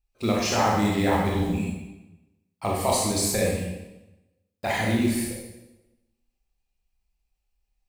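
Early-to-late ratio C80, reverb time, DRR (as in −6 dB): 3.5 dB, 1.0 s, −3.0 dB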